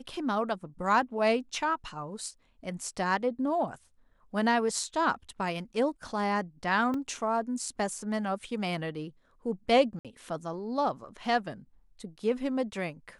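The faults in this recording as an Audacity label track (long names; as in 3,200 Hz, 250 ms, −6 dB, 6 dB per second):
6.940000	6.940000	drop-out 2.2 ms
9.990000	10.050000	drop-out 57 ms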